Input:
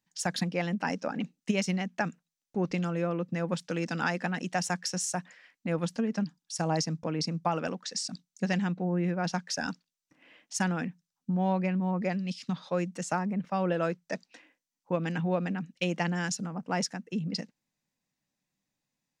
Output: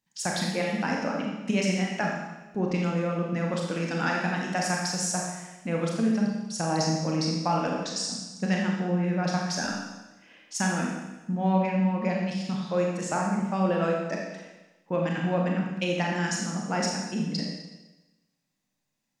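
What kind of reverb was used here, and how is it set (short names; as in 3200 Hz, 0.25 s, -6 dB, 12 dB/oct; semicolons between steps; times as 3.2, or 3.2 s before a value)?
Schroeder reverb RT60 1.1 s, combs from 28 ms, DRR -1.5 dB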